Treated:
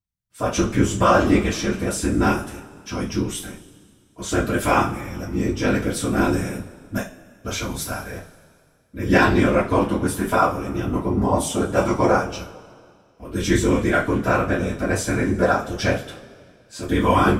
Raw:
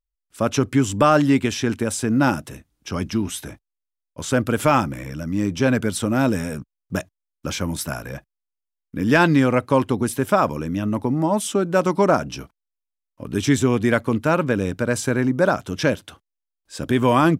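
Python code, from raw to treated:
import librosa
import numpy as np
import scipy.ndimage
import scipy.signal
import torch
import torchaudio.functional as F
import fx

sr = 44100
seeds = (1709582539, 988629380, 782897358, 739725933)

y = fx.whisperise(x, sr, seeds[0])
y = fx.rev_double_slope(y, sr, seeds[1], early_s=0.29, late_s=2.1, knee_db=-22, drr_db=-7.0)
y = y * 10.0 ** (-7.5 / 20.0)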